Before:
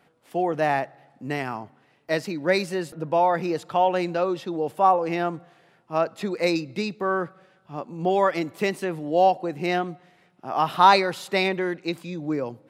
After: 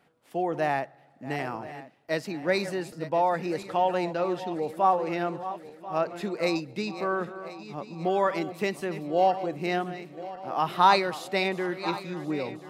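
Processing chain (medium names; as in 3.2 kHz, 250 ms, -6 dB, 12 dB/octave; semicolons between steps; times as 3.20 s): backward echo that repeats 518 ms, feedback 64%, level -13 dB; trim -4 dB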